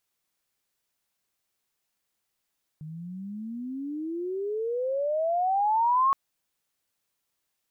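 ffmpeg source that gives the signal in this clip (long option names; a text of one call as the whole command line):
ffmpeg -f lavfi -i "aevalsrc='pow(10,(-18.5+18*(t/3.32-1))/20)*sin(2*PI*151*3.32/(34.5*log(2)/12)*(exp(34.5*log(2)/12*t/3.32)-1))':duration=3.32:sample_rate=44100" out.wav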